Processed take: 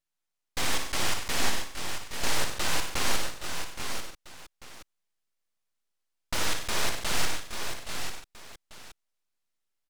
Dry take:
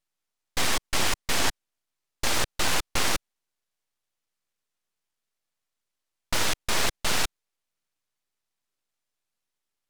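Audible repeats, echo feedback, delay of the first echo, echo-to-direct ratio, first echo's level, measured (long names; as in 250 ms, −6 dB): 8, repeats not evenly spaced, 56 ms, −1.5 dB, −7.0 dB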